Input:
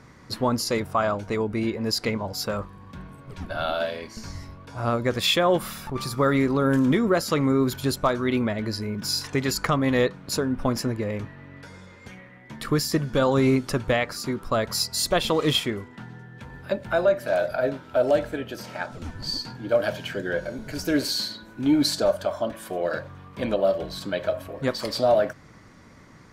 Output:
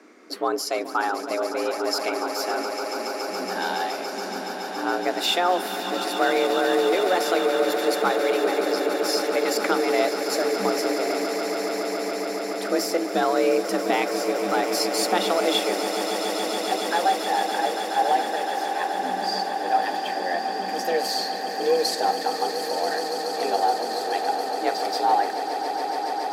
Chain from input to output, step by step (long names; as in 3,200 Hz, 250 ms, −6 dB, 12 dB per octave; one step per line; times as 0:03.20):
echo that builds up and dies away 141 ms, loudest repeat 8, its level −12 dB
frequency shifter +180 Hz
level −1.5 dB